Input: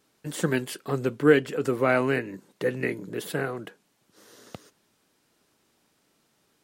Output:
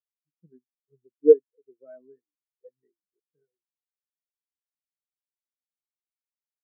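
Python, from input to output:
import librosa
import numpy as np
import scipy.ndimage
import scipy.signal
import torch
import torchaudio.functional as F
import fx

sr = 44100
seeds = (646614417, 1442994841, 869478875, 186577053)

y = fx.spectral_expand(x, sr, expansion=4.0)
y = y * 10.0 ** (3.0 / 20.0)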